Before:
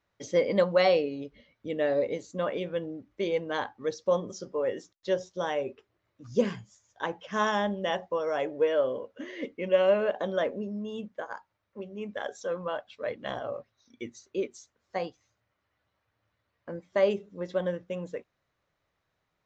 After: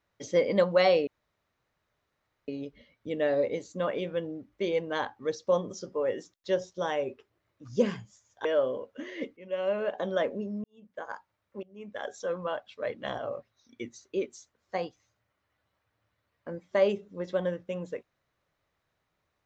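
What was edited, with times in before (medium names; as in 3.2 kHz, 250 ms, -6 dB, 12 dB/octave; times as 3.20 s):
1.07 s: insert room tone 1.41 s
7.04–8.66 s: delete
9.58–10.33 s: fade in, from -18.5 dB
10.85–11.27 s: fade in quadratic
11.84–12.34 s: fade in linear, from -19.5 dB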